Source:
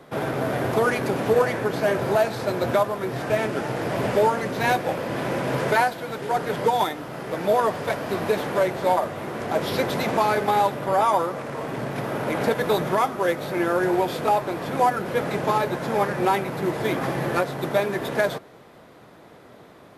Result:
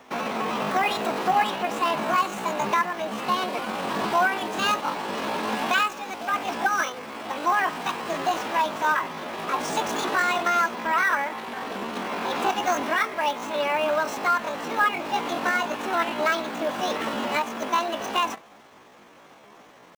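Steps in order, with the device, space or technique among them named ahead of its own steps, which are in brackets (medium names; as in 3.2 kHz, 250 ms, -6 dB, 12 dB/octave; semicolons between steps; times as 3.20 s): chipmunk voice (pitch shift +9 st); trim -2 dB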